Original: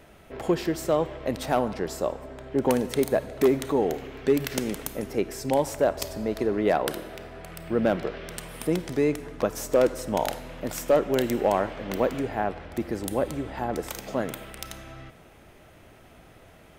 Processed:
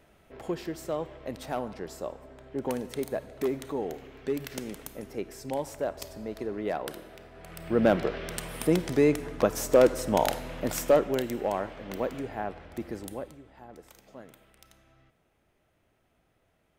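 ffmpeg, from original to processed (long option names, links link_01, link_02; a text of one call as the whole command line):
ffmpeg -i in.wav -af "volume=1.5dB,afade=type=in:start_time=7.33:duration=0.56:silence=0.316228,afade=type=out:start_time=10.78:duration=0.47:silence=0.398107,afade=type=out:start_time=12.94:duration=0.44:silence=0.237137" out.wav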